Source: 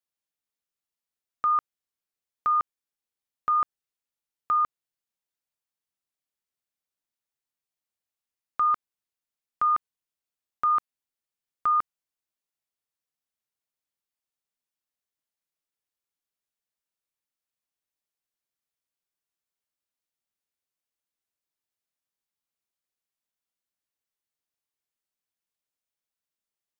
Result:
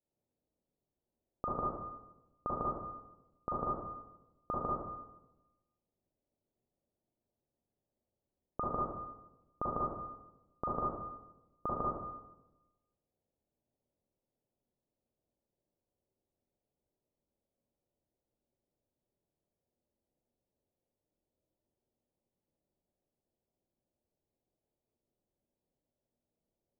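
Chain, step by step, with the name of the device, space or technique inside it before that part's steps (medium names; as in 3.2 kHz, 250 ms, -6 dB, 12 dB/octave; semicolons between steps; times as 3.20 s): next room (low-pass 620 Hz 24 dB/octave; reverberation RT60 1.0 s, pre-delay 35 ms, DRR -5.5 dB); trim +9 dB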